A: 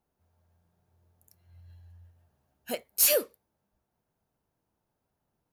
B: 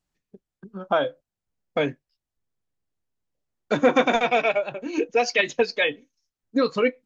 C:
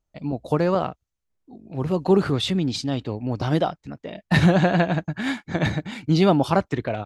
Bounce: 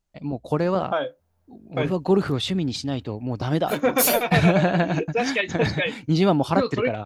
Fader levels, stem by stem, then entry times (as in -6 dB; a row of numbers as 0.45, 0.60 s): +1.0, -3.0, -1.5 dB; 1.00, 0.00, 0.00 s